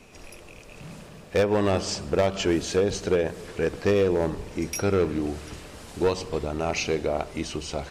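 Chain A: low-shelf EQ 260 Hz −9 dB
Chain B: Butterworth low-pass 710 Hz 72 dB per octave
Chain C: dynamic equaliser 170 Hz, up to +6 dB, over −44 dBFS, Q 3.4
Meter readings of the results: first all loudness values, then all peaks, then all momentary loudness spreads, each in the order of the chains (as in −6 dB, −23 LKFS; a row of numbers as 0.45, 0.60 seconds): −28.0, −26.5, −25.5 LKFS; −12.0, −13.0, −13.0 dBFS; 21, 20, 19 LU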